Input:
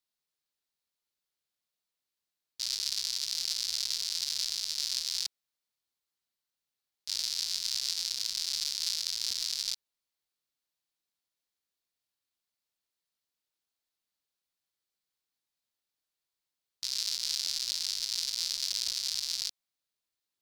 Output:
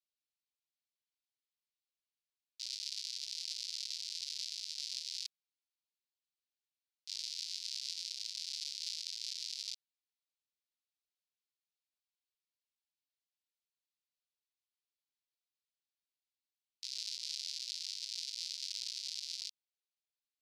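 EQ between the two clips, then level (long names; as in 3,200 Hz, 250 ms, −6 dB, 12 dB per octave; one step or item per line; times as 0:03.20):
four-pole ladder band-pass 2,900 Hz, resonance 40%
first difference
+8.5 dB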